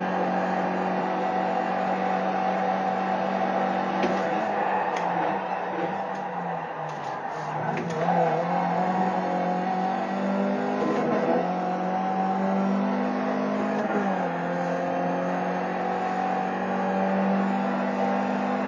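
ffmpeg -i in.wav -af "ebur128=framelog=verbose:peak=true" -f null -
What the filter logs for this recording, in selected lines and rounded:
Integrated loudness:
  I:         -26.1 LUFS
  Threshold: -36.1 LUFS
Loudness range:
  LRA:         2.3 LU
  Threshold: -46.2 LUFS
  LRA low:   -27.8 LUFS
  LRA high:  -25.5 LUFS
True peak:
  Peak:      -11.8 dBFS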